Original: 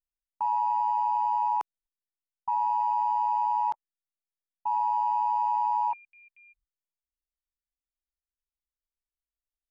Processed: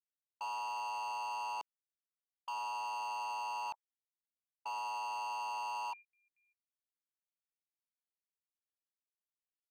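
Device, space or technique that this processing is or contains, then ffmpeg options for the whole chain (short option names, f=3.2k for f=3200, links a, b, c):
walkie-talkie: -af "highpass=600,lowpass=2.2k,asoftclip=type=hard:threshold=-34.5dB,agate=range=-16dB:threshold=-47dB:ratio=16:detection=peak,volume=-3.5dB"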